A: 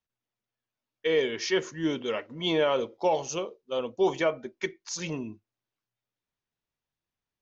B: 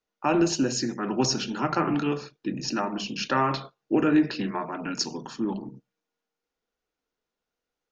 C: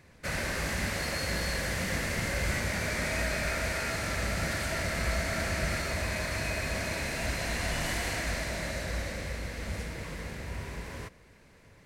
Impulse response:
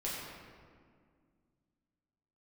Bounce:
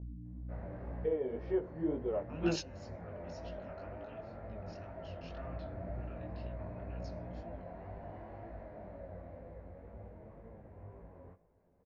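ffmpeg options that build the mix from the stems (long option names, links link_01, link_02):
-filter_complex "[0:a]aeval=exprs='val(0)+0.00891*(sin(2*PI*60*n/s)+sin(2*PI*2*60*n/s)/2+sin(2*PI*3*60*n/s)/3+sin(2*PI*4*60*n/s)/4+sin(2*PI*5*60*n/s)/5)':channel_layout=same,volume=0.5dB,asplit=3[link_01][link_02][link_03];[link_01]atrim=end=2.54,asetpts=PTS-STARTPTS,afade=type=out:start_time=2.536:duration=0.004:curve=hsin[link_04];[link_02]atrim=start=2.54:end=5.46,asetpts=PTS-STARTPTS,volume=0[link_05];[link_03]atrim=start=5.46,asetpts=PTS-STARTPTS,afade=type=in:duration=0.004:curve=hsin[link_06];[link_04][link_05][link_06]concat=n=3:v=0:a=1,asplit=2[link_07][link_08];[1:a]acompressor=threshold=-39dB:ratio=1.5,equalizer=frequency=2800:width=0.59:gain=8.5,adelay=2050,volume=-2dB[link_09];[2:a]flanger=delay=8.7:depth=3.3:regen=43:speed=0.49:shape=triangular,adelay=250,volume=-7dB[link_10];[link_08]apad=whole_len=439309[link_11];[link_09][link_11]sidechaingate=range=-23dB:threshold=-32dB:ratio=16:detection=peak[link_12];[link_07][link_10]amix=inputs=2:normalize=0,lowpass=frequency=710:width_type=q:width=1.7,alimiter=limit=-22.5dB:level=0:latency=1:release=470,volume=0dB[link_13];[link_12][link_13]amix=inputs=2:normalize=0,lowpass=5000,flanger=delay=17.5:depth=6.2:speed=2"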